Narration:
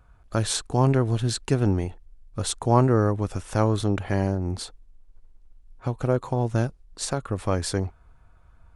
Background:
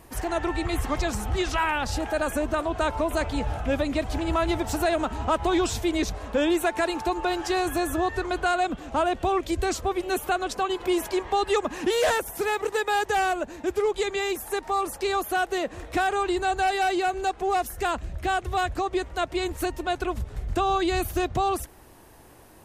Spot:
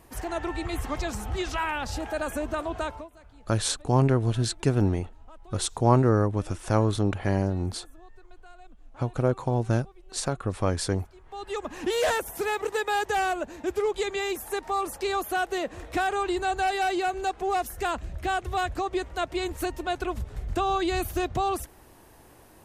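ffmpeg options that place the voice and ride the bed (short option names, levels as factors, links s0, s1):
-filter_complex "[0:a]adelay=3150,volume=0.891[s0];[1:a]volume=12.6,afade=t=out:st=2.77:d=0.33:silence=0.0630957,afade=t=in:st=11.23:d=0.77:silence=0.0501187[s1];[s0][s1]amix=inputs=2:normalize=0"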